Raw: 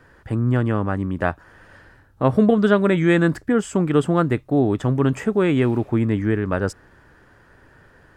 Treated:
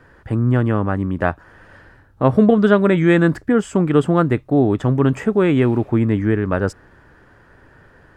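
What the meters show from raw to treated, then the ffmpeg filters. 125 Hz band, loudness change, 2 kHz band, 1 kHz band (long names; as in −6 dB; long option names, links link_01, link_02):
+3.0 dB, +3.0 dB, +2.0 dB, +2.5 dB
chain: -af "highshelf=frequency=3800:gain=-6,volume=3dB"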